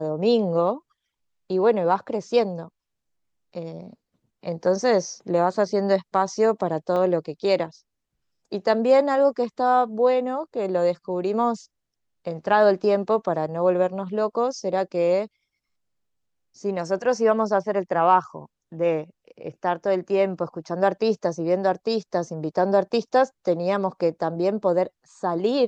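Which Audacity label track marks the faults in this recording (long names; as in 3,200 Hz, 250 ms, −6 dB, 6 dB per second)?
6.960000	6.960000	drop-out 2.6 ms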